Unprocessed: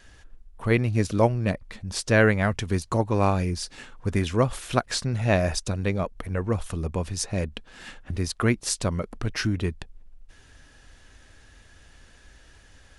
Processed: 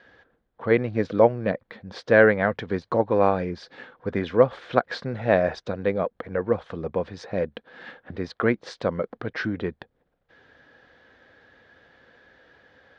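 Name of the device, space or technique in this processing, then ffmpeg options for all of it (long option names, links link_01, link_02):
kitchen radio: -af "highpass=170,equalizer=frequency=500:width_type=q:width=4:gain=9,equalizer=frequency=750:width_type=q:width=4:gain=3,equalizer=frequency=1600:width_type=q:width=4:gain=4,equalizer=frequency=2700:width_type=q:width=4:gain=-8,lowpass=frequency=3600:width=0.5412,lowpass=frequency=3600:width=1.3066"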